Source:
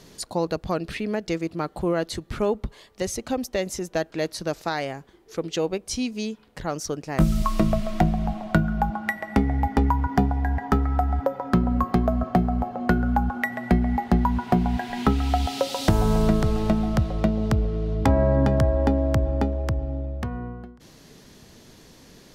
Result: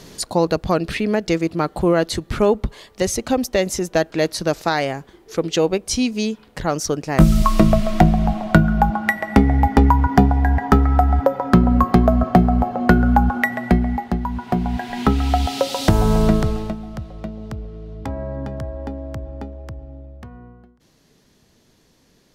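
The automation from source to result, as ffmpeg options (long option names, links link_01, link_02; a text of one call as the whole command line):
ffmpeg -i in.wav -af "volume=15.5dB,afade=type=out:start_time=13.36:duration=0.84:silence=0.281838,afade=type=in:start_time=14.2:duration=1.01:silence=0.398107,afade=type=out:start_time=16.34:duration=0.43:silence=0.223872" out.wav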